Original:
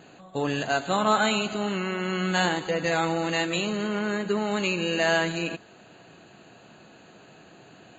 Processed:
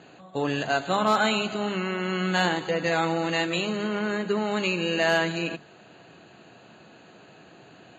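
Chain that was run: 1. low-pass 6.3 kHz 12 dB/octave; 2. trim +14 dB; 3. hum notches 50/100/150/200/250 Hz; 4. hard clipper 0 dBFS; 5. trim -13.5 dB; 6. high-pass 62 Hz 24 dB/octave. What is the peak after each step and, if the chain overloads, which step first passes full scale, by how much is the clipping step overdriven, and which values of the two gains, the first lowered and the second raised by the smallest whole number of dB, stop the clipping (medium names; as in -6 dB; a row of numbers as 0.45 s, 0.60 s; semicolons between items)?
-10.0 dBFS, +4.0 dBFS, +4.0 dBFS, 0.0 dBFS, -13.5 dBFS, -11.0 dBFS; step 2, 4.0 dB; step 2 +10 dB, step 5 -9.5 dB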